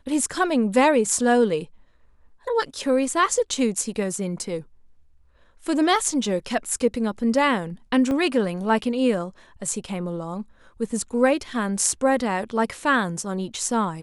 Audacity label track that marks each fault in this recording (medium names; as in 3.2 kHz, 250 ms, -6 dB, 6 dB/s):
8.110000	8.110000	dropout 2.7 ms